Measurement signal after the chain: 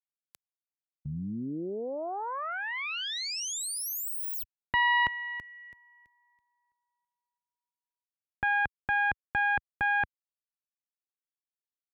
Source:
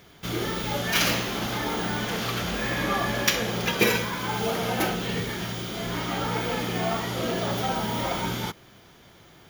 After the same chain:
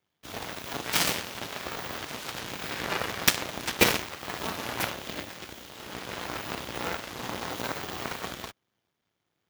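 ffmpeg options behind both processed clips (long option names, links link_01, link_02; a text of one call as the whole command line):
ffmpeg -i in.wav -af "aeval=exprs='0.668*(cos(1*acos(clip(val(0)/0.668,-1,1)))-cos(1*PI/2))+0.0075*(cos(3*acos(clip(val(0)/0.668,-1,1)))-cos(3*PI/2))+0.0944*(cos(7*acos(clip(val(0)/0.668,-1,1)))-cos(7*PI/2))+0.075*(cos(8*acos(clip(val(0)/0.668,-1,1)))-cos(8*PI/2))':channel_layout=same,highpass=72,volume=3dB" out.wav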